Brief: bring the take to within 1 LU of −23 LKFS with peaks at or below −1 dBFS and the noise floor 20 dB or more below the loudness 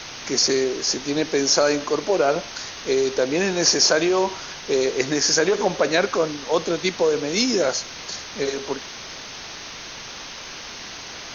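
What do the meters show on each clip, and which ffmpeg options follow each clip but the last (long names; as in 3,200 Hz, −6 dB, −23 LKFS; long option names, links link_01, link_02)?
background noise floor −37 dBFS; target noise floor −41 dBFS; integrated loudness −21.0 LKFS; sample peak −4.0 dBFS; target loudness −23.0 LKFS
→ -af "afftdn=noise_reduction=6:noise_floor=-37"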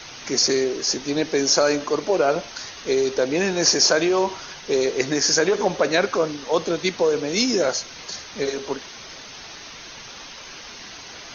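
background noise floor −40 dBFS; target noise floor −41 dBFS
→ -af "afftdn=noise_reduction=6:noise_floor=-40"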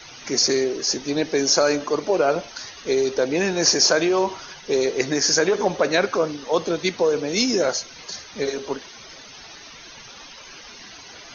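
background noise floor −43 dBFS; integrated loudness −21.0 LKFS; sample peak −4.0 dBFS; target loudness −23.0 LKFS
→ -af "volume=-2dB"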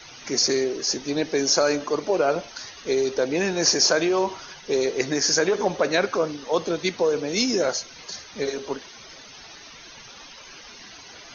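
integrated loudness −23.0 LKFS; sample peak −6.0 dBFS; background noise floor −45 dBFS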